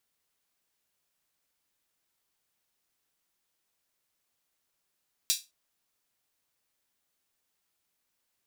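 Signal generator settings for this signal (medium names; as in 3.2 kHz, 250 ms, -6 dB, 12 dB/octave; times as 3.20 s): open hi-hat length 0.21 s, high-pass 4 kHz, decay 0.23 s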